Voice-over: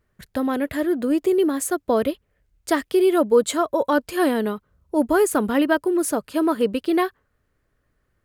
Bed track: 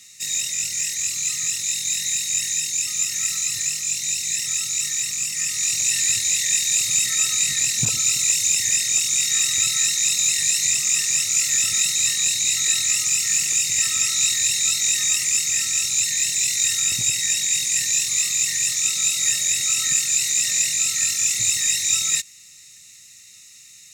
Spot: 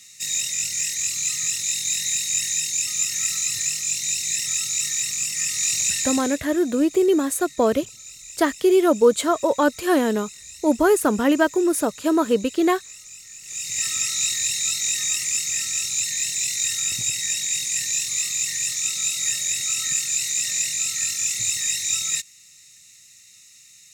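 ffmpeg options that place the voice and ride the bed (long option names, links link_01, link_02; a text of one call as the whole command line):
ffmpeg -i stem1.wav -i stem2.wav -filter_complex "[0:a]adelay=5700,volume=1dB[link_01];[1:a]volume=17.5dB,afade=type=out:start_time=5.79:duration=0.63:silence=0.0891251,afade=type=in:start_time=13.42:duration=0.45:silence=0.125893[link_02];[link_01][link_02]amix=inputs=2:normalize=0" out.wav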